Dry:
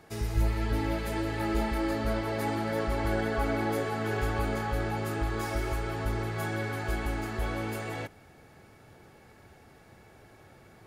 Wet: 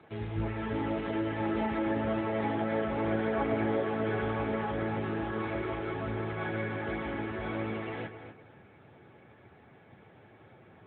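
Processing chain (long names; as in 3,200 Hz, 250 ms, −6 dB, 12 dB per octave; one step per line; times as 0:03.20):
feedback echo with a low-pass in the loop 250 ms, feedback 21%, low-pass 3,000 Hz, level −9 dB
AMR narrowband 10.2 kbit/s 8,000 Hz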